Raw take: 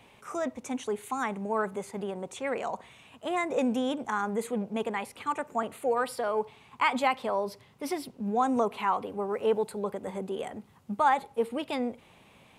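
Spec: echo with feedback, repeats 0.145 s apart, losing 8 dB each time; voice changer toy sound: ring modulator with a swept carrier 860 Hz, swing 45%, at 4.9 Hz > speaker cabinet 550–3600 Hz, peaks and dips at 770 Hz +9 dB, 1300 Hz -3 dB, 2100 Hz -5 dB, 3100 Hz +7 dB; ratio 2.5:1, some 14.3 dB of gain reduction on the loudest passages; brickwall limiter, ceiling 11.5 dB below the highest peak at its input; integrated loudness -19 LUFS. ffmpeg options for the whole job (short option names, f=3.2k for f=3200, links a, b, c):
-af "acompressor=threshold=-43dB:ratio=2.5,alimiter=level_in=11dB:limit=-24dB:level=0:latency=1,volume=-11dB,aecho=1:1:145|290|435|580|725:0.398|0.159|0.0637|0.0255|0.0102,aeval=exprs='val(0)*sin(2*PI*860*n/s+860*0.45/4.9*sin(2*PI*4.9*n/s))':c=same,highpass=550,equalizer=f=770:t=q:w=4:g=9,equalizer=f=1.3k:t=q:w=4:g=-3,equalizer=f=2.1k:t=q:w=4:g=-5,equalizer=f=3.1k:t=q:w=4:g=7,lowpass=f=3.6k:w=0.5412,lowpass=f=3.6k:w=1.3066,volume=27.5dB"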